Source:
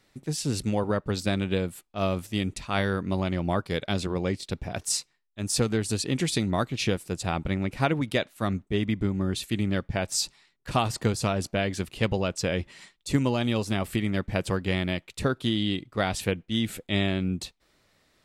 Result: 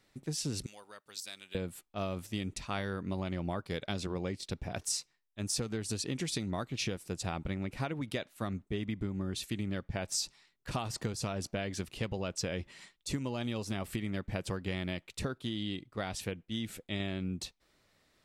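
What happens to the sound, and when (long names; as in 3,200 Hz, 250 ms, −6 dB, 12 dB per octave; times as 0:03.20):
0:00.66–0:01.55: first difference
0:15.38–0:17.00: clip gain −3.5 dB
whole clip: downward compressor, threshold −27 dBFS; dynamic equaliser 5,700 Hz, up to +4 dB, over −54 dBFS, Q 3.2; level −4.5 dB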